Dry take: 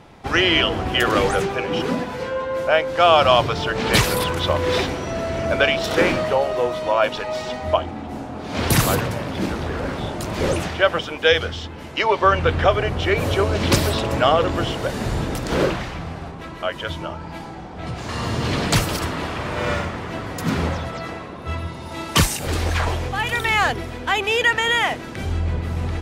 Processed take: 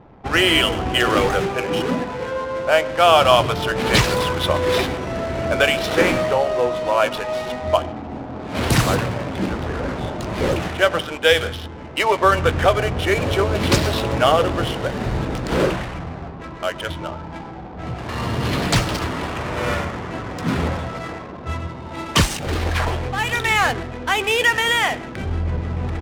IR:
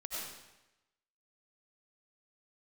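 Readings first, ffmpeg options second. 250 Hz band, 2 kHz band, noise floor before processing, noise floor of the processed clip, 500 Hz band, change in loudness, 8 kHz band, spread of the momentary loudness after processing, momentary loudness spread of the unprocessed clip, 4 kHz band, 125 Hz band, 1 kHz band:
+1.0 dB, +1.0 dB, −34 dBFS, −34 dBFS, +1.0 dB, +1.0 dB, −0.5 dB, 13 LU, 12 LU, +1.0 dB, +0.5 dB, +1.0 dB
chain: -filter_complex "[0:a]asplit=2[link_01][link_02];[link_02]adelay=16,volume=-13.5dB[link_03];[link_01][link_03]amix=inputs=2:normalize=0,asplit=2[link_04][link_05];[1:a]atrim=start_sample=2205,afade=type=out:start_time=0.25:duration=0.01,atrim=end_sample=11466,highshelf=frequency=3100:gain=8.5[link_06];[link_05][link_06]afir=irnorm=-1:irlink=0,volume=-18dB[link_07];[link_04][link_07]amix=inputs=2:normalize=0,adynamicsmooth=sensitivity=6:basefreq=910"

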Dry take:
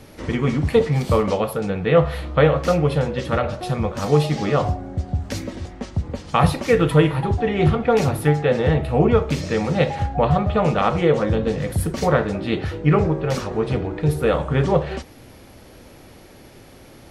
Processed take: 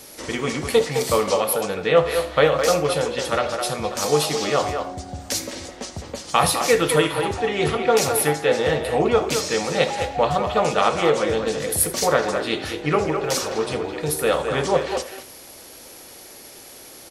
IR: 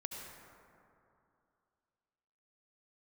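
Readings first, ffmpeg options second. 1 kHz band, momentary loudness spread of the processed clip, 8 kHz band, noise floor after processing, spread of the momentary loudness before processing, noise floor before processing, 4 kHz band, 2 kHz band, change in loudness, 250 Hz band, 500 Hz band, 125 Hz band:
+1.0 dB, 17 LU, +13.5 dB, −43 dBFS, 9 LU, −45 dBFS, +7.0 dB, +2.5 dB, −1.0 dB, −6.0 dB, 0.0 dB, −11.0 dB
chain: -filter_complex "[0:a]bass=frequency=250:gain=-13,treble=frequency=4000:gain=14,asplit=2[link_01][link_02];[link_02]adelay=210,highpass=300,lowpass=3400,asoftclip=type=hard:threshold=-10.5dB,volume=-6dB[link_03];[link_01][link_03]amix=inputs=2:normalize=0,asplit=2[link_04][link_05];[1:a]atrim=start_sample=2205,atrim=end_sample=3969[link_06];[link_05][link_06]afir=irnorm=-1:irlink=0,volume=0.5dB[link_07];[link_04][link_07]amix=inputs=2:normalize=0,volume=-4dB"

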